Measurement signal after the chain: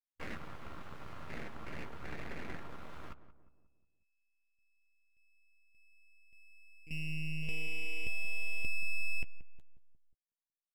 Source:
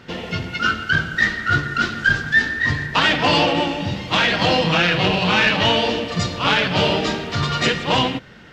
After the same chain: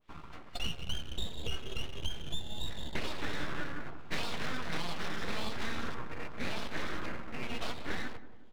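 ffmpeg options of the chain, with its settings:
ffmpeg -i in.wav -filter_complex "[0:a]afwtdn=0.0562,acrossover=split=580 2400:gain=0.0631 1 0.0794[link_01][link_02][link_03];[link_01][link_02][link_03]amix=inputs=3:normalize=0,acrossover=split=130[link_04][link_05];[link_05]acompressor=threshold=-26dB:ratio=6[link_06];[link_04][link_06]amix=inputs=2:normalize=0,aeval=exprs='abs(val(0))':channel_layout=same,asplit=2[link_07][link_08];[link_08]adelay=13,volume=-12dB[link_09];[link_07][link_09]amix=inputs=2:normalize=0,asplit=2[link_10][link_11];[link_11]adelay=180,lowpass=frequency=970:poles=1,volume=-12dB,asplit=2[link_12][link_13];[link_13]adelay=180,lowpass=frequency=970:poles=1,volume=0.52,asplit=2[link_14][link_15];[link_15]adelay=180,lowpass=frequency=970:poles=1,volume=0.52,asplit=2[link_16][link_17];[link_17]adelay=180,lowpass=frequency=970:poles=1,volume=0.52,asplit=2[link_18][link_19];[link_19]adelay=180,lowpass=frequency=970:poles=1,volume=0.52[link_20];[link_12][link_14][link_16][link_18][link_20]amix=inputs=5:normalize=0[link_21];[link_10][link_21]amix=inputs=2:normalize=0,adynamicequalizer=threshold=0.00355:dfrequency=1700:dqfactor=0.7:tfrequency=1700:tqfactor=0.7:attack=5:release=100:ratio=0.375:range=2:mode=cutabove:tftype=highshelf,volume=-4dB" out.wav

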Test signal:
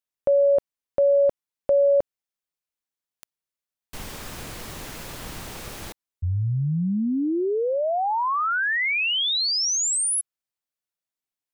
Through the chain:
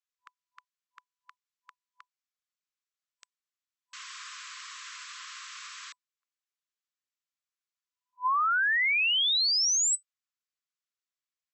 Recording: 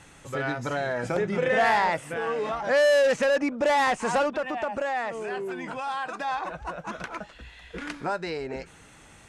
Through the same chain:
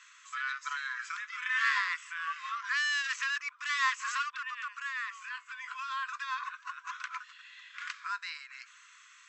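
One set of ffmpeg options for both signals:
ffmpeg -i in.wav -af "afftfilt=real='re*between(b*sr/4096,1000,8000)':imag='im*between(b*sr/4096,1000,8000)':win_size=4096:overlap=0.75,volume=-2dB" out.wav

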